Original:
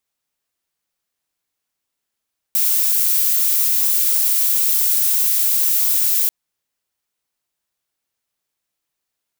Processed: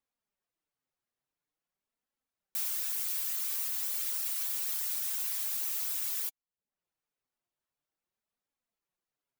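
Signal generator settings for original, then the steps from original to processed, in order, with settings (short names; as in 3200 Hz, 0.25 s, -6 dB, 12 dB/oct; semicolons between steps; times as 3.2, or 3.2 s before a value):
noise violet, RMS -16.5 dBFS 3.74 s
reverb removal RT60 0.55 s; high shelf 2300 Hz -11.5 dB; flange 0.47 Hz, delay 3.5 ms, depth 5.1 ms, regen +42%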